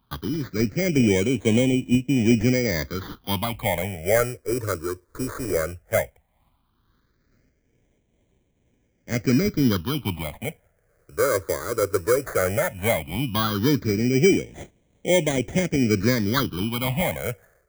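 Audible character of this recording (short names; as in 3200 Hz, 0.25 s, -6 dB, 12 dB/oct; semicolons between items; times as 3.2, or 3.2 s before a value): aliases and images of a low sample rate 2700 Hz, jitter 0%; tremolo triangle 2.2 Hz, depth 40%; phasing stages 6, 0.15 Hz, lowest notch 200–1300 Hz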